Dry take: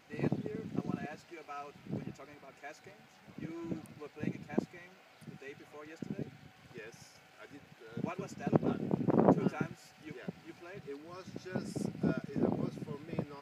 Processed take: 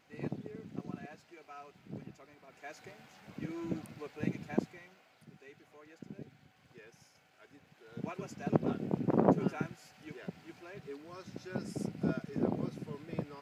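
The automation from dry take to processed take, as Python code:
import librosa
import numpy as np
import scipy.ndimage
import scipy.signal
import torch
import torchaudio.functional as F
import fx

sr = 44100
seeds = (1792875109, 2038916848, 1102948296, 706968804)

y = fx.gain(x, sr, db=fx.line((2.36, -5.5), (2.8, 2.5), (4.49, 2.5), (5.25, -7.0), (7.51, -7.0), (8.26, -0.5)))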